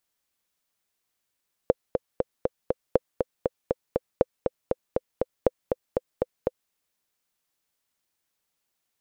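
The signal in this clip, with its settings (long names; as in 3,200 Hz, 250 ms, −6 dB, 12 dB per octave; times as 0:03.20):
click track 239 BPM, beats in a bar 5, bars 4, 510 Hz, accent 5 dB −4.5 dBFS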